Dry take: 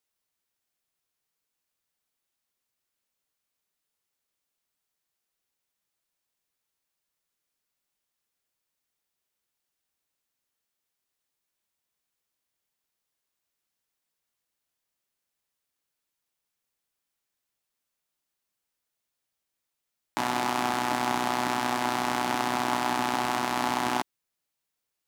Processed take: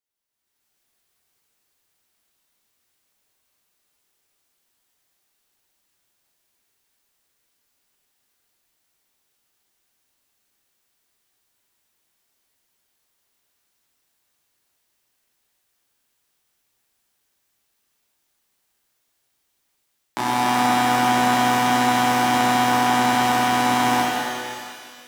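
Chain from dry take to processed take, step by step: level rider gain up to 14.5 dB; pitch-shifted reverb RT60 2 s, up +12 st, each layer -8 dB, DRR -4.5 dB; trim -8 dB

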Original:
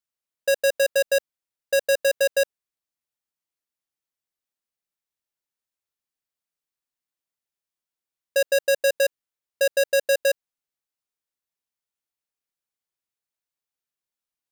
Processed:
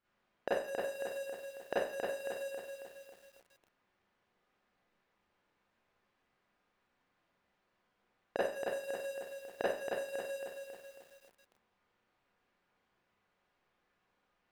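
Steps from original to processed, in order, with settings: level-controlled noise filter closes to 1.8 kHz, open at -23.5 dBFS; peak limiter -24 dBFS, peak gain reduction 8.5 dB; inverted gate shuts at -36 dBFS, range -38 dB; Schroeder reverb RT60 0.45 s, combs from 31 ms, DRR -8.5 dB; bit-crushed delay 273 ms, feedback 55%, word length 12-bit, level -4.5 dB; trim +12.5 dB

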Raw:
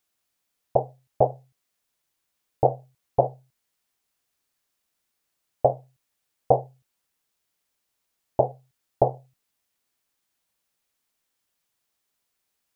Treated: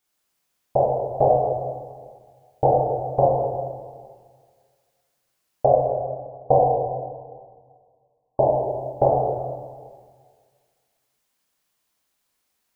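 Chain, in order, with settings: 5.66–8.46 s: brick-wall FIR low-pass 1.1 kHz; plate-style reverb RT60 1.8 s, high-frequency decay 0.75×, DRR -5.5 dB; trim -1.5 dB

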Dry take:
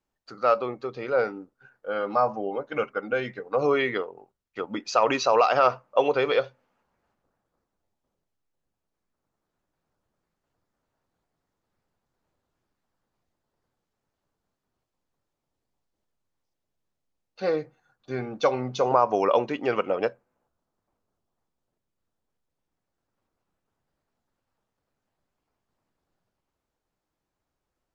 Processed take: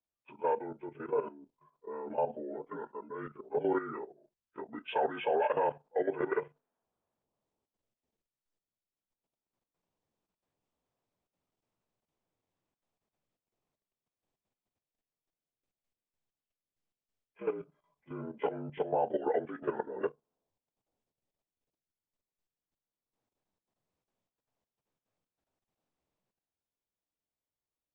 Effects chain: frequency axis rescaled in octaves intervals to 79%; level held to a coarse grid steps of 12 dB; trim -4 dB

